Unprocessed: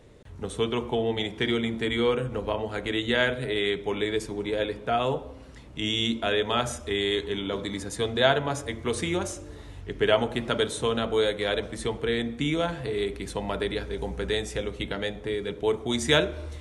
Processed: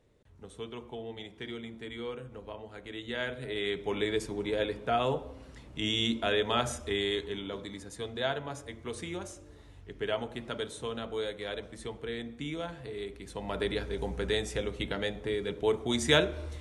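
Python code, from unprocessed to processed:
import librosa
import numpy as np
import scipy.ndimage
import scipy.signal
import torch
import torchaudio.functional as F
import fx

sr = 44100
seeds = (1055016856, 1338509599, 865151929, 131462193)

y = fx.gain(x, sr, db=fx.line((2.86, -14.5), (3.98, -3.0), (6.87, -3.0), (7.8, -10.5), (13.25, -10.5), (13.65, -2.5)))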